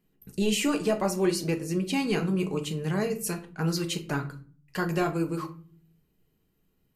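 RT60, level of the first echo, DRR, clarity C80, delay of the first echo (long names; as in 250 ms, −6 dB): 0.40 s, no echo audible, 4.0 dB, 18.5 dB, no echo audible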